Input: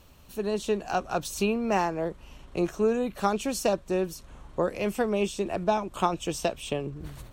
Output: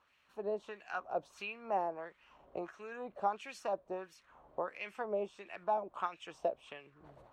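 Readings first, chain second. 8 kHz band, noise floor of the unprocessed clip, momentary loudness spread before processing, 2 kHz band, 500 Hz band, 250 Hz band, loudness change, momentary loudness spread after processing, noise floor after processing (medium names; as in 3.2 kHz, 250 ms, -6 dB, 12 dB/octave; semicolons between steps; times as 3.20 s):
-24.0 dB, -52 dBFS, 9 LU, -9.0 dB, -11.5 dB, -20.5 dB, -11.0 dB, 13 LU, -71 dBFS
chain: recorder AGC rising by 7.1 dB/s; bass shelf 110 Hz +6.5 dB; LFO band-pass sine 1.5 Hz 580–2200 Hz; trim -4 dB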